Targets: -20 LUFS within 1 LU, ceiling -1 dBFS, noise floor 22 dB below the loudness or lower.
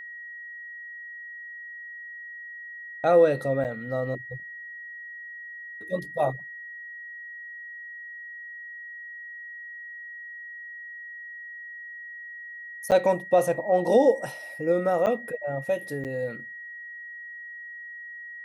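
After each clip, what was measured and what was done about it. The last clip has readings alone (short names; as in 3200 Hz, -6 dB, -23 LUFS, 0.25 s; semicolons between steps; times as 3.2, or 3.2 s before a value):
dropouts 4; longest dropout 8.3 ms; steady tone 1900 Hz; tone level -38 dBFS; loudness -29.5 LUFS; peak -9.0 dBFS; loudness target -20.0 LUFS
-> interpolate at 3.64/12.91/15.06/16.04, 8.3 ms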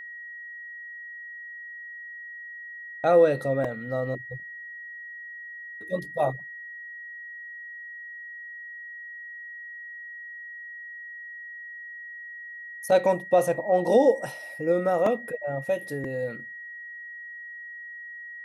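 dropouts 0; steady tone 1900 Hz; tone level -38 dBFS
-> notch 1900 Hz, Q 30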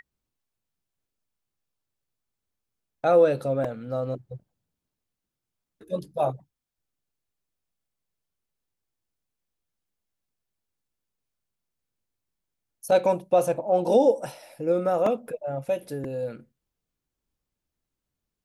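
steady tone none; loudness -25.0 LUFS; peak -8.5 dBFS; loudness target -20.0 LUFS
-> gain +5 dB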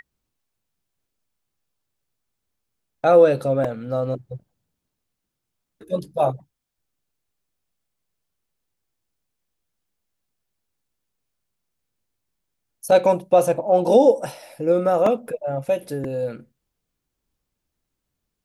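loudness -20.0 LUFS; peak -3.5 dBFS; noise floor -81 dBFS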